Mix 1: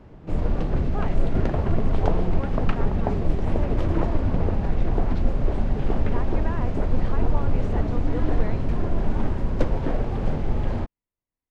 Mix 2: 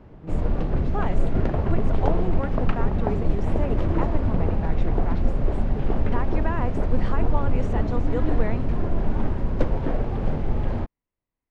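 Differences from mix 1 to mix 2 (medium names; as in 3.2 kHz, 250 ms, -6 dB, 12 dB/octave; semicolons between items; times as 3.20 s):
speech +5.0 dB; background: add treble shelf 4.8 kHz -8 dB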